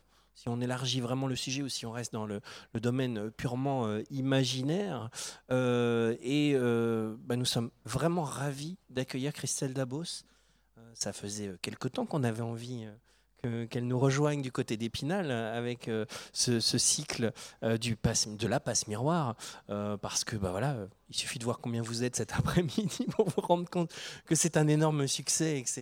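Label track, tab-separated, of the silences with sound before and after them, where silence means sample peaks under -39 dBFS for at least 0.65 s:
10.190000	11.000000	silence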